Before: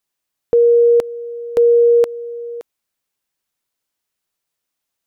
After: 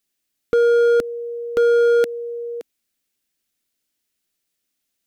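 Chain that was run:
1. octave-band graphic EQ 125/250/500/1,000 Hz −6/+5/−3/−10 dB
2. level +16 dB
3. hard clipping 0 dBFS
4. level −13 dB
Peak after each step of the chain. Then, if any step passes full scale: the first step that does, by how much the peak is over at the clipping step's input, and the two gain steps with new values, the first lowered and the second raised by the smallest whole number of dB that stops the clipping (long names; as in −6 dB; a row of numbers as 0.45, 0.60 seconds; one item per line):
−9.5, +6.5, 0.0, −13.0 dBFS
step 2, 6.5 dB
step 2 +9 dB, step 4 −6 dB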